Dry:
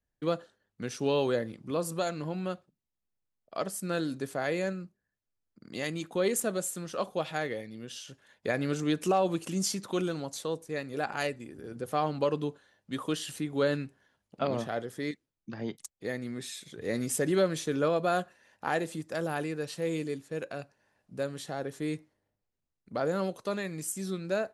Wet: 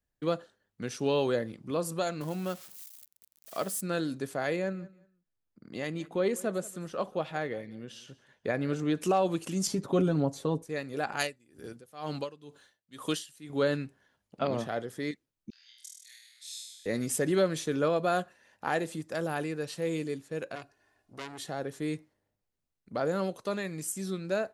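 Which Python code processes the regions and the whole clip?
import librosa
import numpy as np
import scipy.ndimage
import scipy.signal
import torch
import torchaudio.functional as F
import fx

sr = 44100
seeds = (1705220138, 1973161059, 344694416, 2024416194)

y = fx.chain(x, sr, fx.crossing_spikes(level_db=-35.5),
    fx.highpass(hz=52.0, slope=12), at=(2.21, 3.81))
y = fx.chain(y, sr, fx.high_shelf(hz=3200.0, db=-9.5),
    fx.echo_feedback(ms=183, feedback_pct=21, wet_db=-21), at=(4.56, 8.97))
y = fx.chain(y, sr, fx.tilt_shelf(db=8.0, hz=1100.0),
    fx.comb(ms=7.2, depth=0.57), at=(9.67, 10.63))
y = fx.chain(y, sr, fx.high_shelf(hz=2600.0, db=10.0),
    fx.tremolo_db(hz=2.1, depth_db=23), at=(11.19, 13.5))
y = fx.chain(y, sr, fx.ladder_highpass(hz=2900.0, resonance_pct=25),
    fx.room_flutter(wall_m=4.3, rt60_s=0.99), at=(15.5, 16.86))
y = fx.chain(y, sr, fx.comb(ms=2.8, depth=0.72),
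    fx.transformer_sat(knee_hz=2800.0), at=(20.55, 21.47))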